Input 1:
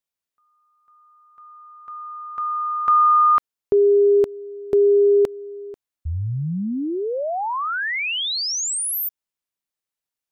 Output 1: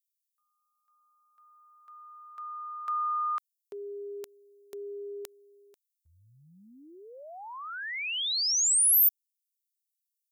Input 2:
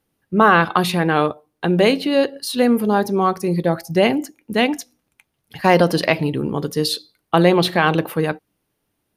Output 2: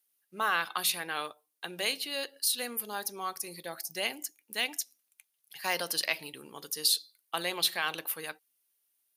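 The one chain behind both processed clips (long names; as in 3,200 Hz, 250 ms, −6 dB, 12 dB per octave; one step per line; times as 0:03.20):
first difference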